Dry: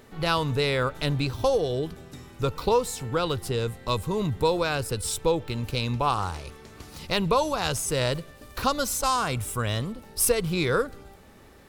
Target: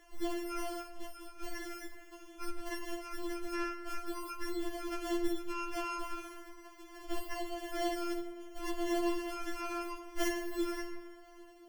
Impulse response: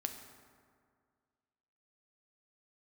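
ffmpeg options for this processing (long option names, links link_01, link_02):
-filter_complex "[0:a]acrossover=split=250|3000[link_01][link_02][link_03];[link_02]acompressor=threshold=-46dB:ratio=2.5[link_04];[link_01][link_04][link_03]amix=inputs=3:normalize=0,acrusher=samples=35:mix=1:aa=0.000001[link_05];[1:a]atrim=start_sample=2205,asetrate=52920,aresample=44100[link_06];[link_05][link_06]afir=irnorm=-1:irlink=0,asettb=1/sr,asplit=3[link_07][link_08][link_09];[link_07]atrim=end=0.824[link_10];[link_08]atrim=start=0.82:end=1.41,asetpts=PTS-STARTPTS,afade=type=in:duration=0.004:curve=qsin,afade=type=out:start_time=0.586:duration=0.004:curve=qsin,acompressor=threshold=-36dB:ratio=6[link_11];[link_09]atrim=start=1.406[link_12];[link_10][link_11]acrossfade=duration=0.004:curve1=hsin:curve2=qsin[link_13];[link_13][link_12]acrossfade=duration=0.004:curve1=qsin:curve2=hsin,afftfilt=real='re*4*eq(mod(b,16),0)':imag='im*4*eq(mod(b,16),0)':win_size=2048:overlap=0.75"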